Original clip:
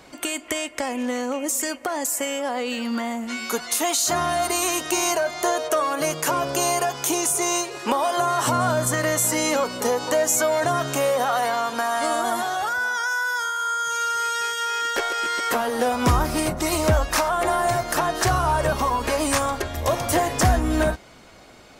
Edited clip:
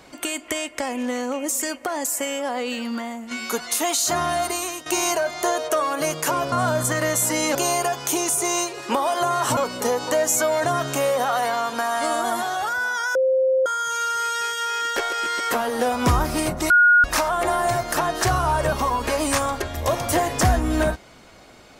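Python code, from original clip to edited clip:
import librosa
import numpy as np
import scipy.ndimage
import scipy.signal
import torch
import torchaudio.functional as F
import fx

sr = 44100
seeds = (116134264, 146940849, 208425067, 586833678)

y = fx.edit(x, sr, fx.fade_out_to(start_s=2.69, length_s=0.62, floor_db=-6.5),
    fx.fade_out_to(start_s=4.37, length_s=0.49, floor_db=-12.5),
    fx.move(start_s=8.54, length_s=1.03, to_s=6.52),
    fx.bleep(start_s=13.15, length_s=0.51, hz=524.0, db=-15.5),
    fx.bleep(start_s=16.7, length_s=0.34, hz=1440.0, db=-10.5), tone=tone)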